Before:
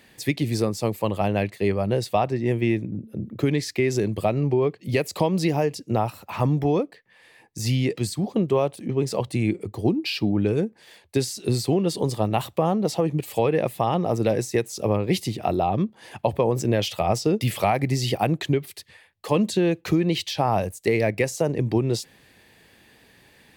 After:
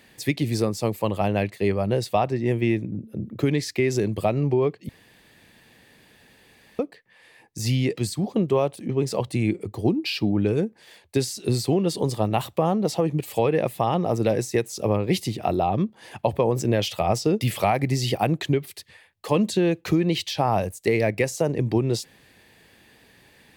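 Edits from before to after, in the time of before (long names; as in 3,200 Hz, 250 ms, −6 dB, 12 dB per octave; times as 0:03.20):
0:04.89–0:06.79: fill with room tone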